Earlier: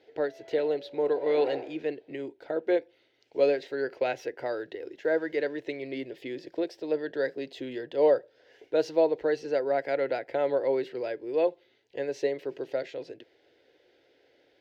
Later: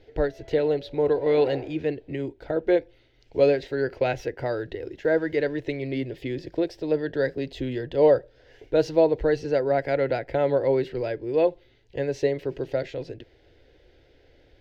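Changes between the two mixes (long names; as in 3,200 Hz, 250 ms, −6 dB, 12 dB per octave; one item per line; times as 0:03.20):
speech +3.5 dB
master: remove high-pass filter 300 Hz 12 dB per octave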